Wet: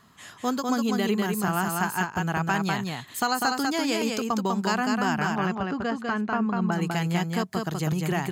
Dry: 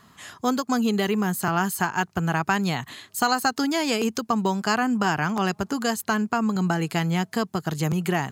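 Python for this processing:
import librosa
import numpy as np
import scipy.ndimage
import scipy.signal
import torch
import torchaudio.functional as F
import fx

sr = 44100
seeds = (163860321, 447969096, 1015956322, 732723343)

y = fx.lowpass(x, sr, hz=2600.0, slope=12, at=(5.35, 6.72))
y = y + 10.0 ** (-3.5 / 20.0) * np.pad(y, (int(198 * sr / 1000.0), 0))[:len(y)]
y = y * librosa.db_to_amplitude(-3.5)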